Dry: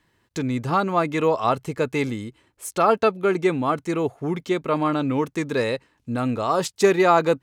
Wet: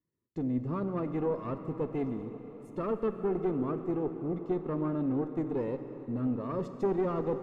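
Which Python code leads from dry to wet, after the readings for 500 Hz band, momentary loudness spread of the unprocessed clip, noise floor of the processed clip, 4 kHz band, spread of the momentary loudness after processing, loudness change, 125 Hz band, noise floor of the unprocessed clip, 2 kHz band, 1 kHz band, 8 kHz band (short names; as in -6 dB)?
-11.0 dB, 11 LU, -49 dBFS, under -25 dB, 7 LU, -10.5 dB, -7.0 dB, -68 dBFS, -23.5 dB, -17.5 dB, under -30 dB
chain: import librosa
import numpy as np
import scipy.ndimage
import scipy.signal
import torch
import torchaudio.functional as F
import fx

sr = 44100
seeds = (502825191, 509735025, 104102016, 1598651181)

y = fx.highpass(x, sr, hz=200.0, slope=6)
y = fx.leveller(y, sr, passes=2)
y = np.convolve(y, np.full(56, 1.0 / 56))[:len(y)]
y = fx.tube_stage(y, sr, drive_db=14.0, bias=0.55)
y = fx.rev_plate(y, sr, seeds[0], rt60_s=4.8, hf_ratio=0.85, predelay_ms=0, drr_db=7.5)
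y = F.gain(torch.from_numpy(y), -7.5).numpy()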